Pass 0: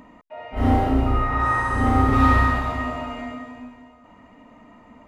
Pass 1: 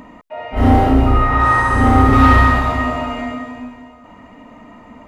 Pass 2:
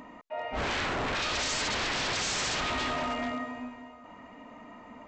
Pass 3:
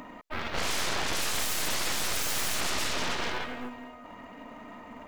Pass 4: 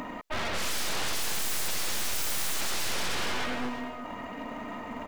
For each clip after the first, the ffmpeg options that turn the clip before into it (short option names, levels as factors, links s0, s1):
-af "acontrast=89,volume=1.12"
-af "lowshelf=f=190:g=-9.5,aresample=16000,aeval=exprs='0.1*(abs(mod(val(0)/0.1+3,4)-2)-1)':c=same,aresample=44100,volume=0.501"
-af "aeval=exprs='0.0841*(cos(1*acos(clip(val(0)/0.0841,-1,1)))-cos(1*PI/2))+0.0188*(cos(3*acos(clip(val(0)/0.0841,-1,1)))-cos(3*PI/2))+0.0237*(cos(6*acos(clip(val(0)/0.0841,-1,1)))-cos(6*PI/2))+0.0211*(cos(7*acos(clip(val(0)/0.0841,-1,1)))-cos(7*PI/2))':c=same,acrusher=bits=8:mode=log:mix=0:aa=0.000001"
-af "asoftclip=type=hard:threshold=0.0211,aecho=1:1:350:0.178,volume=2.24"